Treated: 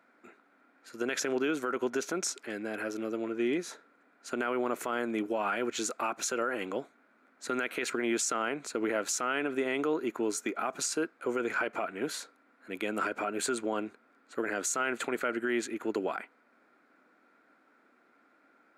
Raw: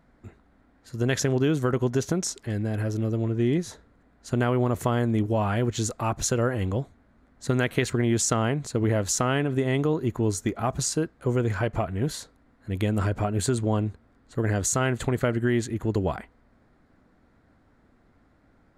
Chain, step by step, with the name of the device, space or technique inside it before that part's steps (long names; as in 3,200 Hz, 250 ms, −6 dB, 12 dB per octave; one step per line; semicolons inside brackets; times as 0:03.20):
laptop speaker (high-pass filter 270 Hz 24 dB per octave; parametric band 1,400 Hz +10 dB 0.34 octaves; parametric band 2,400 Hz +9.5 dB 0.31 octaves; brickwall limiter −18 dBFS, peak gain reduction 11 dB)
level −3 dB